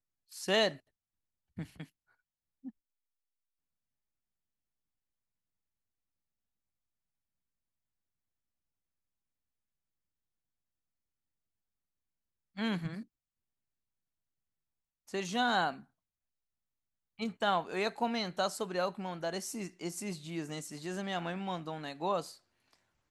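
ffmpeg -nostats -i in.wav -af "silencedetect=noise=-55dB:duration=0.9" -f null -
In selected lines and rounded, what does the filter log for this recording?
silence_start: 2.70
silence_end: 12.56 | silence_duration: 9.86
silence_start: 13.04
silence_end: 15.08 | silence_duration: 2.03
silence_start: 15.84
silence_end: 17.19 | silence_duration: 1.35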